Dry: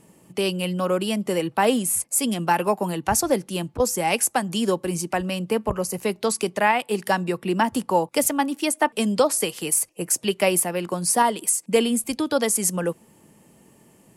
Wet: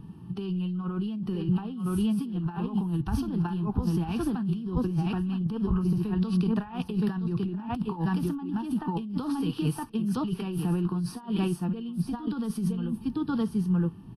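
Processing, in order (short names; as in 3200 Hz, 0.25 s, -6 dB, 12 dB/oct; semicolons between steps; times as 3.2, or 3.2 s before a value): harmonic-percussive split percussive -9 dB; dynamic EQ 9900 Hz, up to -5 dB, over -42 dBFS, Q 0.73; fixed phaser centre 2100 Hz, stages 6; on a send: echo 0.966 s -8 dB; on the sum: negative-ratio compressor -36 dBFS, ratio -1; RIAA curve playback; Vorbis 32 kbps 32000 Hz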